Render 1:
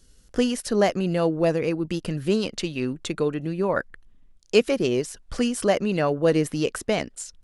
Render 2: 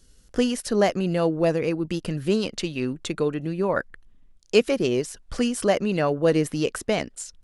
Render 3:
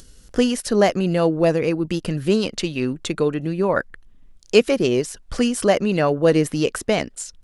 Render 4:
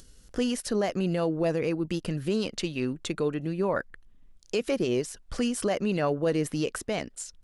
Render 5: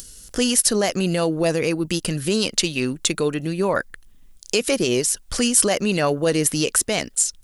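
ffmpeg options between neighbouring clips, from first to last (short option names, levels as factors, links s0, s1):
-af anull
-af "acompressor=mode=upward:threshold=0.00708:ratio=2.5,volume=1.58"
-af "alimiter=limit=0.282:level=0:latency=1:release=49,volume=0.473"
-af "crystalizer=i=4:c=0,volume=1.88"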